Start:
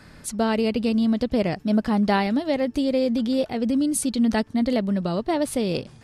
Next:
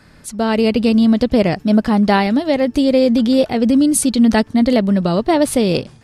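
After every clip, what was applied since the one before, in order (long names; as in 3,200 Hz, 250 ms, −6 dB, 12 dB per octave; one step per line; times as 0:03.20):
automatic gain control gain up to 11.5 dB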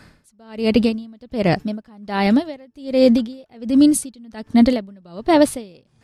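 tremolo with a sine in dB 1.3 Hz, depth 32 dB
level +2 dB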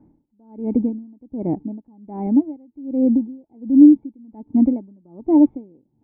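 formant resonators in series u
level +4.5 dB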